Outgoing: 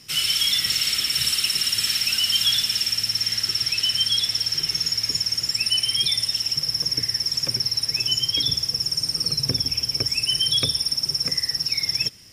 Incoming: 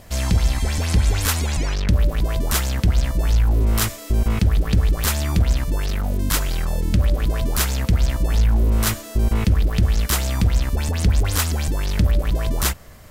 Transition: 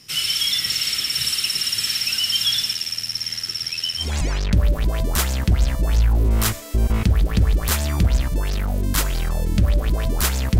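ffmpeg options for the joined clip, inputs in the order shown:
-filter_complex "[0:a]asettb=1/sr,asplit=3[a][b][c];[a]atrim=end=2.734[d];[b]atrim=start=2.73:end=4.14,asetpts=PTS-STARTPTS,afade=t=in:d=0.004:c=qsin,afade=t=out:st=1.406:d=0.004:c=qsin,tremolo=f=82:d=0.667[e];[c]atrim=start=4.136[f];[d][e]acrossfade=d=0.004:c1=hsin:c2=qsin[g];[g][f]acrossfade=d=0.004:c1=qsin:c2=hsin,apad=whole_dur=10.59,atrim=end=10.59,atrim=end=4.14,asetpts=PTS-STARTPTS[h];[1:a]atrim=start=1.32:end=7.95,asetpts=PTS-STARTPTS[i];[h][i]acrossfade=d=0.18:c1=tri:c2=tri"

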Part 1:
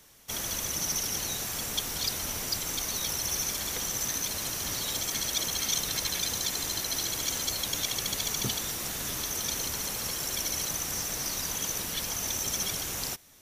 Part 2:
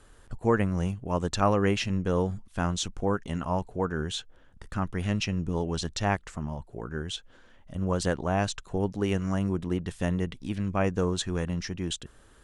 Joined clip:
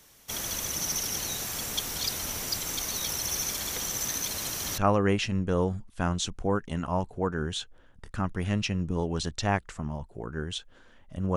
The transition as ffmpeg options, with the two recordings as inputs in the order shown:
-filter_complex "[0:a]apad=whole_dur=11.36,atrim=end=11.36,atrim=end=4.782[a];[1:a]atrim=start=1.358:end=7.94[b];[a][b]acrossfade=d=0.004:c1=hsin:c2=hsin"

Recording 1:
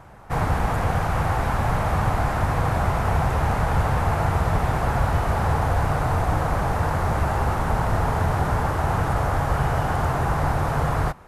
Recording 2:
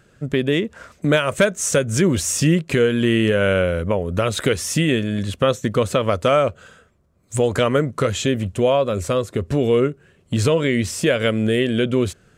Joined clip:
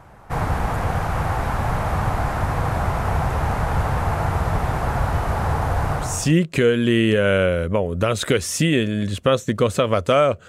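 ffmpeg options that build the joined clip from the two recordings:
-filter_complex "[0:a]apad=whole_dur=10.48,atrim=end=10.48,atrim=end=6.35,asetpts=PTS-STARTPTS[a];[1:a]atrim=start=2.09:end=6.64,asetpts=PTS-STARTPTS[b];[a][b]acrossfade=d=0.42:c1=tri:c2=tri"

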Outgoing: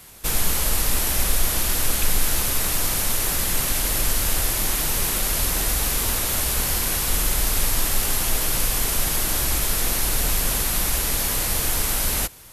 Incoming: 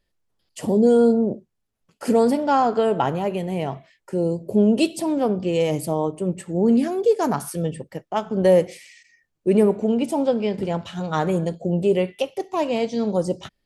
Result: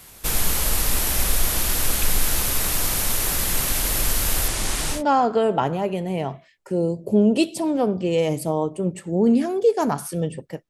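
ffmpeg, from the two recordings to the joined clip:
-filter_complex "[0:a]asettb=1/sr,asplit=3[a][b][c];[a]atrim=end=4.484[d];[b]atrim=start=4.48:end=5.03,asetpts=PTS-STARTPTS,afade=t=in:d=0.004:c=qsin,afade=t=out:st=0.546:d=0.004:c=qsin,lowpass=f=10k:w=0.5412,lowpass=f=10k:w=1.3066[e];[c]atrim=start=5.026[f];[d][e]acrossfade=d=0.004:c1=hsin:c2=qsin[g];[g][f]acrossfade=d=0.004:c1=qsin:c2=hsin,apad=whole_dur=10.69,atrim=end=10.69,atrim=end=5.03,asetpts=PTS-STARTPTS[h];[1:a]atrim=start=2.33:end=8.11,asetpts=PTS-STARTPTS[i];[h][i]acrossfade=d=0.12:c1=tri:c2=tri"

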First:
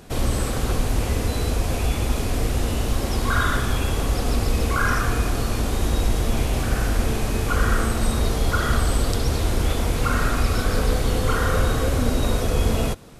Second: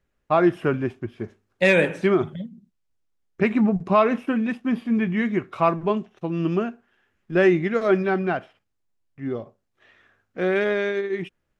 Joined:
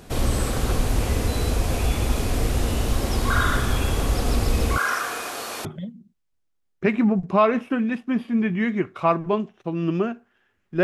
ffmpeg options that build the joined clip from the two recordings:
-filter_complex "[0:a]asettb=1/sr,asplit=3[a][b][c];[a]atrim=end=4.784[d];[b]atrim=start=4.78:end=5.65,asetpts=PTS-STARTPTS,afade=t=in:d=0.004:c=qsin,afade=t=out:st=0.866:d=0.004:c=qsin,highpass=590[e];[c]atrim=start=5.646[f];[d][e]acrossfade=d=0.004:c1=hsin:c2=qsin[g];[g][f]acrossfade=d=0.004:c1=qsin:c2=hsin,apad=whole_dur=10.83,atrim=end=10.83,atrim=end=5.652[h];[1:a]atrim=start=2.218:end=7.4[i];[h][i]acrossfade=d=0.004:c1=hsin:c2=hsin"

